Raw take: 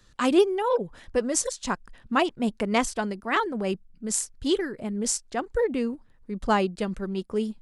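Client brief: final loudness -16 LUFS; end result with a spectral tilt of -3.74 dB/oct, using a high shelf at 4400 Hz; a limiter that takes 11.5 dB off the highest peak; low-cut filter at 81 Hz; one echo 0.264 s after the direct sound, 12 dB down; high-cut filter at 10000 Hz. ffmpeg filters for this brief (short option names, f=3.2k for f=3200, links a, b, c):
-af "highpass=81,lowpass=10k,highshelf=f=4.4k:g=4,alimiter=limit=-17.5dB:level=0:latency=1,aecho=1:1:264:0.251,volume=13dB"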